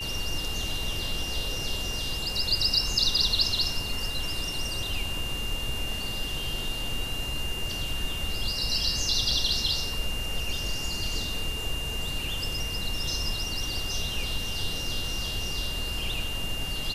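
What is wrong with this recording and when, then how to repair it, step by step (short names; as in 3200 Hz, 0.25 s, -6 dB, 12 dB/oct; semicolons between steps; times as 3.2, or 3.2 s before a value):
tone 2800 Hz -33 dBFS
9.31 gap 3.5 ms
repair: notch 2800 Hz, Q 30; interpolate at 9.31, 3.5 ms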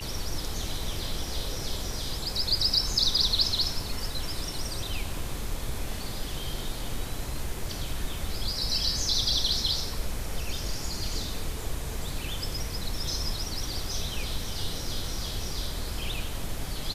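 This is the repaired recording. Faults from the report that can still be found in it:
none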